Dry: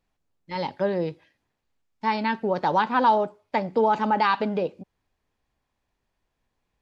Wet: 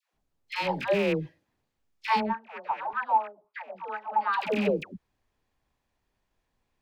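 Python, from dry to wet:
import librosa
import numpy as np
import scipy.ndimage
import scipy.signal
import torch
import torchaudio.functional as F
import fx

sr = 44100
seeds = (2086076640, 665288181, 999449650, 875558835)

y = fx.rattle_buzz(x, sr, strikes_db=-37.0, level_db=-21.0)
y = fx.filter_lfo_bandpass(y, sr, shape='saw_up', hz=fx.line((2.19, 5.9), (4.32, 2.1)), low_hz=600.0, high_hz=2000.0, q=5.4, at=(2.19, 4.32), fade=0.02)
y = fx.dispersion(y, sr, late='lows', ms=143.0, hz=640.0)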